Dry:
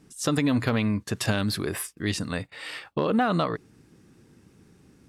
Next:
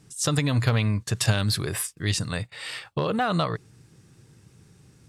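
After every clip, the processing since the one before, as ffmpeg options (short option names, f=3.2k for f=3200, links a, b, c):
-af "equalizer=f=125:t=o:w=1:g=9,equalizer=f=250:t=o:w=1:g=-8,equalizer=f=4k:t=o:w=1:g=3,equalizer=f=8k:t=o:w=1:g=6"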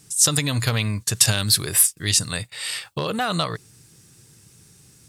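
-af "crystalizer=i=4:c=0,volume=-1dB"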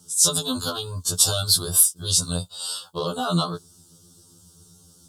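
-af "asuperstop=centerf=2100:order=8:qfactor=1.3,afftfilt=real='re*2*eq(mod(b,4),0)':imag='im*2*eq(mod(b,4),0)':win_size=2048:overlap=0.75,volume=2dB"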